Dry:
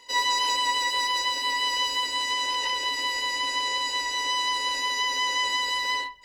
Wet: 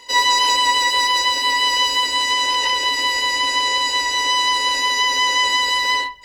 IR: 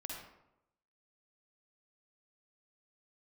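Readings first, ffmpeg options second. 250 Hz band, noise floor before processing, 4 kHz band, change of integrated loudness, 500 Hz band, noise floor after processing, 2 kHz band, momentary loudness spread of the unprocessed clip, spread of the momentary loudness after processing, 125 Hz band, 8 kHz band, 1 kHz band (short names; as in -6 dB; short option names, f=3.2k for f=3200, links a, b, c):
+8.5 dB, -32 dBFS, +8.5 dB, +8.5 dB, +8.5 dB, -24 dBFS, +8.5 dB, 3 LU, 3 LU, n/a, +8.5 dB, +8.5 dB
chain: -af "equalizer=f=70:t=o:w=0.29:g=5,volume=8.5dB"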